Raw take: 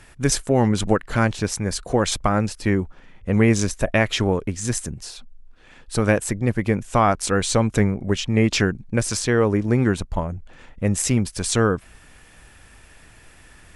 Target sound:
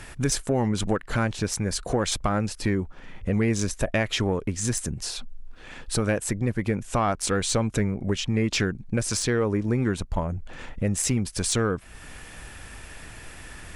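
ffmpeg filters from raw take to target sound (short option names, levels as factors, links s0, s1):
-af "acompressor=threshold=0.0178:ratio=2,asoftclip=type=tanh:threshold=0.126,volume=2.11"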